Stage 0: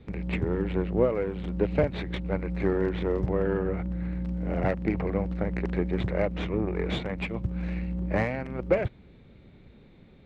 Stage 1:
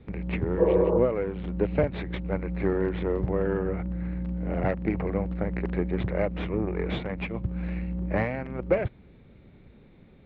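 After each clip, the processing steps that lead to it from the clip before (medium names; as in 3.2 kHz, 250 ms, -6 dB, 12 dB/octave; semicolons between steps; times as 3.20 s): low-pass 3.2 kHz 12 dB/octave; spectral replace 0.61–0.96 s, 260–1500 Hz after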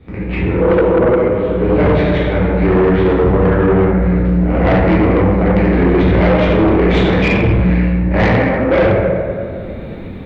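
plate-style reverb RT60 1.8 s, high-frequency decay 0.6×, DRR -8.5 dB; level rider gain up to 11.5 dB; in parallel at -11 dB: sine folder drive 10 dB, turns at -1.5 dBFS; on the sum: trim -2.5 dB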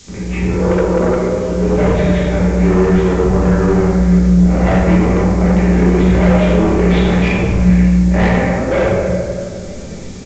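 added noise violet -26 dBFS; simulated room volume 440 m³, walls furnished, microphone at 1.2 m; resampled via 16 kHz; trim -3.5 dB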